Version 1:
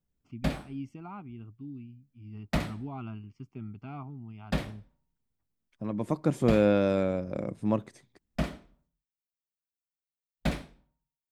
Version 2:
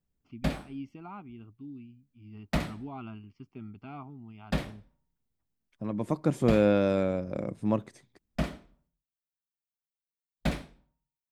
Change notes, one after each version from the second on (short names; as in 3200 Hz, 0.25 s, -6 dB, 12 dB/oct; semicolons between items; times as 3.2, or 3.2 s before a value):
first voice: add graphic EQ 125/4000/8000 Hz -6/+5/-12 dB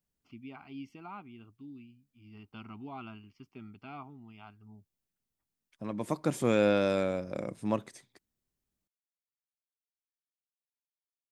background: muted; reverb: off; master: add tilt +2 dB/oct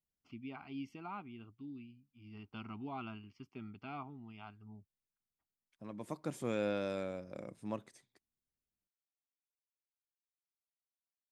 second voice -10.0 dB